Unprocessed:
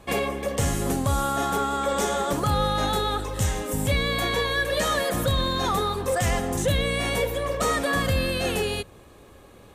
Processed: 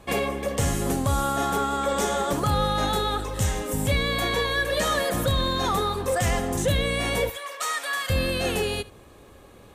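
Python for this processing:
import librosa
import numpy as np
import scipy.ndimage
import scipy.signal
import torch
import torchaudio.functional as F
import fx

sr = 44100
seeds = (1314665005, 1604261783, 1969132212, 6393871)

y = fx.highpass(x, sr, hz=1200.0, slope=12, at=(7.3, 8.1))
y = y + 10.0 ** (-20.5 / 20.0) * np.pad(y, (int(72 * sr / 1000.0), 0))[:len(y)]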